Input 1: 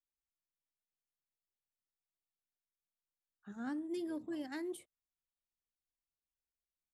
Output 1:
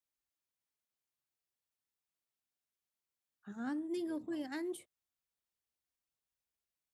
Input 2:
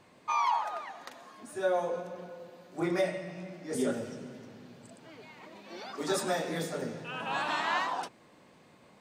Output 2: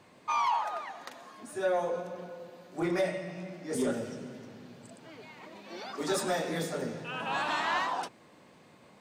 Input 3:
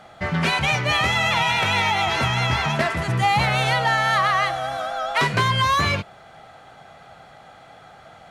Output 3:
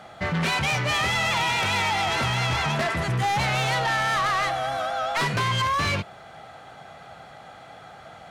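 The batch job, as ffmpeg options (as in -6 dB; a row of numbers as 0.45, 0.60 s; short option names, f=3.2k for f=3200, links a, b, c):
-af "highpass=48,asoftclip=type=tanh:threshold=-22dB,volume=1.5dB"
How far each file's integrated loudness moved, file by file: +1.5, 0.0, -3.5 LU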